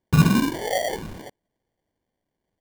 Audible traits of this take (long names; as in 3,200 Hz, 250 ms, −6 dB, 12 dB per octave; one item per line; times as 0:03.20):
phaser sweep stages 4, 1 Hz, lowest notch 260–1,000 Hz
aliases and images of a low sample rate 1,300 Hz, jitter 0%